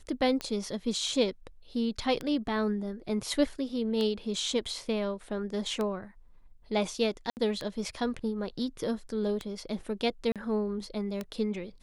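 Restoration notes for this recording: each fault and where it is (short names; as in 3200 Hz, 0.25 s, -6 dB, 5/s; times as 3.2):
tick 33 1/3 rpm -19 dBFS
7.3–7.37 gap 69 ms
10.32–10.36 gap 37 ms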